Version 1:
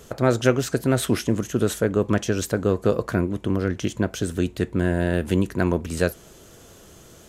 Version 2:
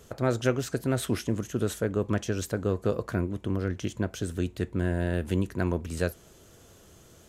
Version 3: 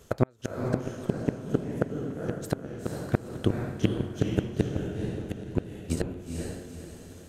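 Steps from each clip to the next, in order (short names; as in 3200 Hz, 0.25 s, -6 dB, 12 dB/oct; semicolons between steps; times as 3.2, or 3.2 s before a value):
bell 87 Hz +4 dB 0.81 oct; gain -7 dB
flipped gate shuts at -18 dBFS, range -30 dB; transient shaper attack +12 dB, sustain 0 dB; diffused feedback echo 0.475 s, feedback 42%, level -3 dB; gain -2.5 dB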